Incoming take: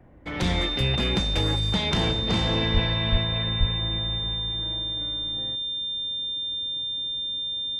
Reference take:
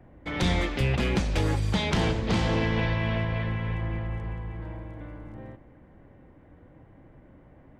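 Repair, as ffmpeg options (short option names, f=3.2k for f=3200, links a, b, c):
-filter_complex "[0:a]bandreject=f=3.6k:w=30,asplit=3[a][b][c];[a]afade=t=out:st=2.73:d=0.02[d];[b]highpass=f=140:w=0.5412,highpass=f=140:w=1.3066,afade=t=in:st=2.73:d=0.02,afade=t=out:st=2.85:d=0.02[e];[c]afade=t=in:st=2.85:d=0.02[f];[d][e][f]amix=inputs=3:normalize=0,asplit=3[g][h][i];[g]afade=t=out:st=3.11:d=0.02[j];[h]highpass=f=140:w=0.5412,highpass=f=140:w=1.3066,afade=t=in:st=3.11:d=0.02,afade=t=out:st=3.23:d=0.02[k];[i]afade=t=in:st=3.23:d=0.02[l];[j][k][l]amix=inputs=3:normalize=0,asplit=3[m][n][o];[m]afade=t=out:st=3.59:d=0.02[p];[n]highpass=f=140:w=0.5412,highpass=f=140:w=1.3066,afade=t=in:st=3.59:d=0.02,afade=t=out:st=3.71:d=0.02[q];[o]afade=t=in:st=3.71:d=0.02[r];[p][q][r]amix=inputs=3:normalize=0"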